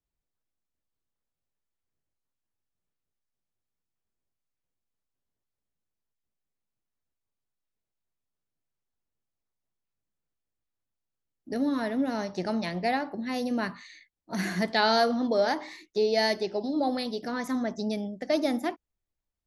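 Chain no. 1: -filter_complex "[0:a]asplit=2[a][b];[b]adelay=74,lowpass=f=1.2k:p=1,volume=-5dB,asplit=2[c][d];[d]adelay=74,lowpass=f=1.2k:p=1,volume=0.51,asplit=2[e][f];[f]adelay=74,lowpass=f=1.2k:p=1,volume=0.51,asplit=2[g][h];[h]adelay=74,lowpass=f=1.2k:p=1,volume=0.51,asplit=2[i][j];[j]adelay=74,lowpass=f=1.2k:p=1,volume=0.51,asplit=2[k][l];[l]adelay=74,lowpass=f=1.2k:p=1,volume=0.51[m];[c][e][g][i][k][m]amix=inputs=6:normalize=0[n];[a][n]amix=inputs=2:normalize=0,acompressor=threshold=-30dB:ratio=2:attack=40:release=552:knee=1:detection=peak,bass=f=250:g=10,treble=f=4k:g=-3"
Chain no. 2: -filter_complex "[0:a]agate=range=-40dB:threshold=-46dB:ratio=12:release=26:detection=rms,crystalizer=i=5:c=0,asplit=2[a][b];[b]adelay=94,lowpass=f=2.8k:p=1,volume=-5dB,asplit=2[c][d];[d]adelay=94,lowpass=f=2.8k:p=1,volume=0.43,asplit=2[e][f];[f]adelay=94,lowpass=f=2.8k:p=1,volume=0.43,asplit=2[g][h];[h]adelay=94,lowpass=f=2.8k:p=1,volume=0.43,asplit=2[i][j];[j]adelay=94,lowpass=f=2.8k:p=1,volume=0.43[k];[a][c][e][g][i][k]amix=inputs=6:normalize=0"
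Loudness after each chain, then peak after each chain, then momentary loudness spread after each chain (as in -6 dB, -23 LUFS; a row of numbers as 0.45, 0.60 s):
-28.5, -24.0 LUFS; -15.0, -4.5 dBFS; 7, 11 LU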